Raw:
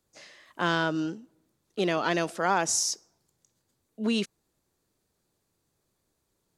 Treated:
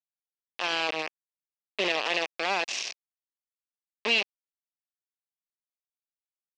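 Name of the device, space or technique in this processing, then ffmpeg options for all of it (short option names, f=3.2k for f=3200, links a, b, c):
hand-held game console: -filter_complex "[0:a]asettb=1/sr,asplit=3[a][b][c];[a]atrim=end=0.724[d];[b]atrim=start=0.72:end=1.98,asetpts=PTS-STARTPTS,afade=t=in:d=0.004:c=qsin,afade=t=out:st=1.256:d=0.004:c=qsin,lowshelf=f=190:g=4.5[e];[c]atrim=start=1.976[f];[d][e]acrossfade=d=0.004:c1=hsin:c2=qsin[g];[g][f]acrossfade=d=0.004:c1=qsin:c2=hsin,acrusher=bits=3:mix=0:aa=0.000001,highpass=470,equalizer=f=940:t=q:w=4:g=-5,equalizer=f=1.4k:t=q:w=4:g=-10,equalizer=f=2.6k:t=q:w=4:g=9,lowpass=f=4.9k:w=0.5412,lowpass=f=4.9k:w=1.3066"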